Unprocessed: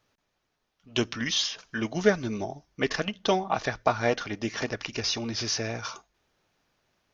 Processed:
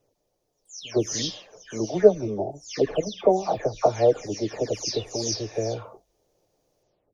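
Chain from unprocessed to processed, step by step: spectral delay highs early, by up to 0.305 s; EQ curve 100 Hz 0 dB, 200 Hz -4 dB, 530 Hz +7 dB, 1500 Hz -16 dB, 3600 Hz -9 dB, 7200 Hz +3 dB; gain +3.5 dB

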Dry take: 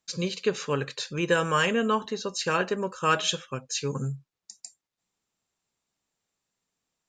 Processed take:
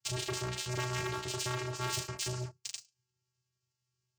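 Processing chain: gliding pitch shift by -3 st starting unshifted; high shelf 2800 Hz +8.5 dB; thinning echo 61 ms, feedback 41%, high-pass 290 Hz, level -5 dB; granular stretch 0.59×, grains 32 ms; bell 5800 Hz +7.5 dB 0.26 oct; fixed phaser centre 2800 Hz, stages 6; vocoder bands 8, square 125 Hz; flange 0.53 Hz, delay 9.4 ms, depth 1.3 ms, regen -47%; sample leveller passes 2; spectral compressor 2:1; gain -1 dB

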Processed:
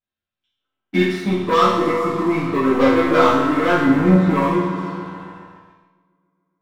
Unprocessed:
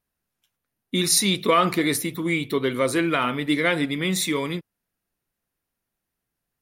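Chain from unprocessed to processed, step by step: 0.59–0.86 spectral gain 270–1600 Hz +10 dB; 1.02–2.05 level quantiser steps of 21 dB; 3.85–4.31 tilt -3.5 dB/oct; multi-head echo 0.14 s, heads all three, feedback 55%, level -18 dB; low-pass sweep 3500 Hz -> 1100 Hz, 0.46–1.34; 2.69–3.23 small resonant body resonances 240/490/2400/3500 Hz, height 12 dB, ringing for 85 ms; sample leveller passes 3; reverb RT60 0.95 s, pre-delay 4 ms, DRR -11.5 dB; gain -14 dB

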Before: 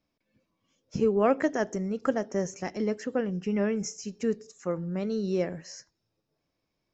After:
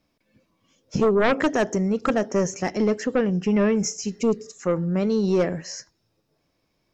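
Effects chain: spectral repair 4.08–4.46, 550–2100 Hz; sine folder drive 9 dB, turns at -10.5 dBFS; gain -4 dB

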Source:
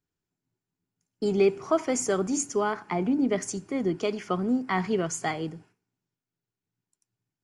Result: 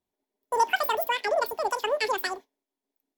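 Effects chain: speed mistake 33 rpm record played at 78 rpm

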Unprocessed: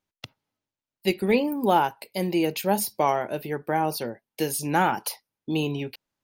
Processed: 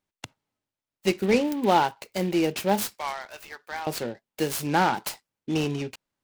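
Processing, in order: 2.94–3.87 HPF 1400 Hz 12 dB/oct; noise-modulated delay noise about 2400 Hz, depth 0.031 ms

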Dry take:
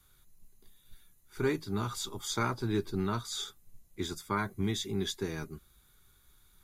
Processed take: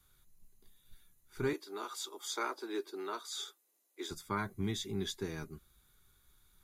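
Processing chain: 1.53–4.11 steep high-pass 320 Hz 36 dB/oct; gain -4 dB

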